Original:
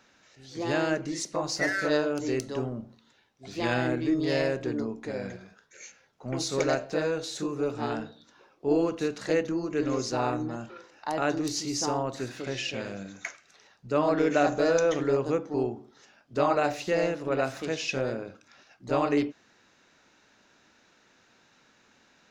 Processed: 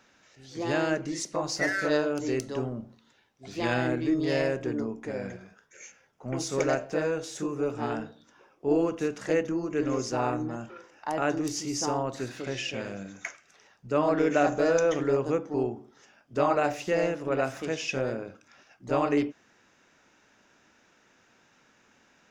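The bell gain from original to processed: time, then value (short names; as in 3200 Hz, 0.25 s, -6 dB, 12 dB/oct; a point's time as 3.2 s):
bell 4100 Hz 0.28 oct
4.17 s -3.5 dB
4.68 s -13 dB
11.62 s -13 dB
12.31 s -1 dB
12.71 s -9 dB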